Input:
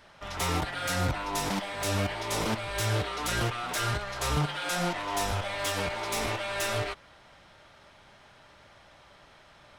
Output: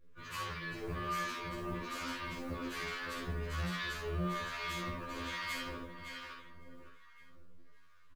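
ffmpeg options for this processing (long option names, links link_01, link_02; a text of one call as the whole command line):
ffmpeg -i in.wav -filter_complex "[0:a]acrusher=bits=9:dc=4:mix=0:aa=0.000001,asuperstop=centerf=660:order=4:qfactor=1.9,highshelf=frequency=2500:gain=-10,asoftclip=type=tanh:threshold=-32.5dB,equalizer=frequency=7400:width=2.4:gain=-2.5,asetrate=52920,aresample=44100,asplit=2[link_01][link_02];[link_02]aecho=0:1:559|1118|1677|2236|2795:0.531|0.239|0.108|0.0484|0.0218[link_03];[link_01][link_03]amix=inputs=2:normalize=0,acrossover=split=820[link_04][link_05];[link_04]aeval=exprs='val(0)*(1-0.7/2+0.7/2*cos(2*PI*1.2*n/s))':channel_layout=same[link_06];[link_05]aeval=exprs='val(0)*(1-0.7/2-0.7/2*cos(2*PI*1.2*n/s))':channel_layout=same[link_07];[link_06][link_07]amix=inputs=2:normalize=0,afftdn=noise_reduction=13:noise_floor=-55,acrusher=bits=8:mode=log:mix=0:aa=0.000001,aecho=1:1:50|66:0.531|0.299,afftfilt=real='re*2*eq(mod(b,4),0)':imag='im*2*eq(mod(b,4),0)':win_size=2048:overlap=0.75,volume=2dB" out.wav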